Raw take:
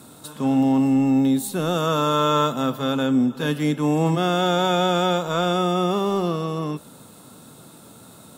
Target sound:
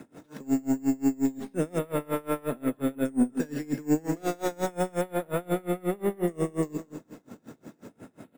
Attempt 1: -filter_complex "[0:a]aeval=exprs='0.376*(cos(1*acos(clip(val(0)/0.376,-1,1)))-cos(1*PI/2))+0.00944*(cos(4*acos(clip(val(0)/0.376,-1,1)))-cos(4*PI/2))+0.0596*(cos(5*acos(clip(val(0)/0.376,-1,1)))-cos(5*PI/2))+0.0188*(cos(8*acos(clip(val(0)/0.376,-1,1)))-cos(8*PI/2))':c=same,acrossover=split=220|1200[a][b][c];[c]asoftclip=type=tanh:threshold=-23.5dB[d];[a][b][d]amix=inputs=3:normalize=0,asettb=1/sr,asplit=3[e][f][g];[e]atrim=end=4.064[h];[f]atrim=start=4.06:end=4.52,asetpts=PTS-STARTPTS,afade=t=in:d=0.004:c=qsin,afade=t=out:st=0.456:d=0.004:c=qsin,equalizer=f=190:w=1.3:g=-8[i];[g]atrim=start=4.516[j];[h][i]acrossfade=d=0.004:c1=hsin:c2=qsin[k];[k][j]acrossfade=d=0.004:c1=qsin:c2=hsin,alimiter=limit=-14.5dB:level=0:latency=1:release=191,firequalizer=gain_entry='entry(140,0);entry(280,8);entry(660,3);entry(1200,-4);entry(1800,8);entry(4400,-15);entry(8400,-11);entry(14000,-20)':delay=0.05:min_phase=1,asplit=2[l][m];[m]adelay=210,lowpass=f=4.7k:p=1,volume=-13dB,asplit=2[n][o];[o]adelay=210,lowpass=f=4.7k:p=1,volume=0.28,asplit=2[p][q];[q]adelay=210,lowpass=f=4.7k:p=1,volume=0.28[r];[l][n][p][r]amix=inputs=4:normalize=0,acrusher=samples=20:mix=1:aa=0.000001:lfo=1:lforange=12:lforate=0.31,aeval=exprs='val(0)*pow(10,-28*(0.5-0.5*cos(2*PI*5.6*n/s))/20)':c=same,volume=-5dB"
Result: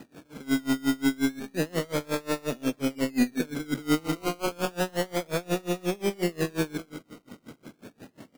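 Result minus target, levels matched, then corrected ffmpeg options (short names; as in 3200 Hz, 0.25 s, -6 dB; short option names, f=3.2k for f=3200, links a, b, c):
decimation with a swept rate: distortion +13 dB
-filter_complex "[0:a]aeval=exprs='0.376*(cos(1*acos(clip(val(0)/0.376,-1,1)))-cos(1*PI/2))+0.00944*(cos(4*acos(clip(val(0)/0.376,-1,1)))-cos(4*PI/2))+0.0596*(cos(5*acos(clip(val(0)/0.376,-1,1)))-cos(5*PI/2))+0.0188*(cos(8*acos(clip(val(0)/0.376,-1,1)))-cos(8*PI/2))':c=same,acrossover=split=220|1200[a][b][c];[c]asoftclip=type=tanh:threshold=-23.5dB[d];[a][b][d]amix=inputs=3:normalize=0,asettb=1/sr,asplit=3[e][f][g];[e]atrim=end=4.064[h];[f]atrim=start=4.06:end=4.52,asetpts=PTS-STARTPTS,afade=t=in:d=0.004:c=qsin,afade=t=out:st=0.456:d=0.004:c=qsin,equalizer=f=190:w=1.3:g=-8[i];[g]atrim=start=4.516[j];[h][i]acrossfade=d=0.004:c1=hsin:c2=qsin[k];[k][j]acrossfade=d=0.004:c1=qsin:c2=hsin,alimiter=limit=-14.5dB:level=0:latency=1:release=191,firequalizer=gain_entry='entry(140,0);entry(280,8);entry(660,3);entry(1200,-4);entry(1800,8);entry(4400,-15);entry(8400,-11);entry(14000,-20)':delay=0.05:min_phase=1,asplit=2[l][m];[m]adelay=210,lowpass=f=4.7k:p=1,volume=-13dB,asplit=2[n][o];[o]adelay=210,lowpass=f=4.7k:p=1,volume=0.28,asplit=2[p][q];[q]adelay=210,lowpass=f=4.7k:p=1,volume=0.28[r];[l][n][p][r]amix=inputs=4:normalize=0,acrusher=samples=5:mix=1:aa=0.000001:lfo=1:lforange=3:lforate=0.31,aeval=exprs='val(0)*pow(10,-28*(0.5-0.5*cos(2*PI*5.6*n/s))/20)':c=same,volume=-5dB"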